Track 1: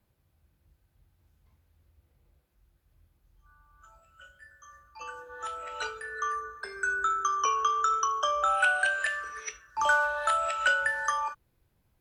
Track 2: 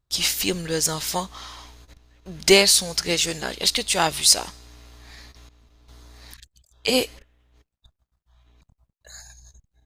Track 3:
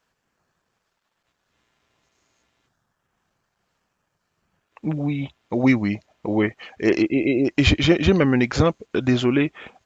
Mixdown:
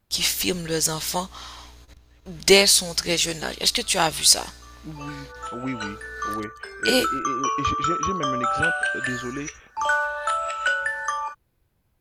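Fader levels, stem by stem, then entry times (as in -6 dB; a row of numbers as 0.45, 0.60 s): +2.0, 0.0, -13.0 dB; 0.00, 0.00, 0.00 s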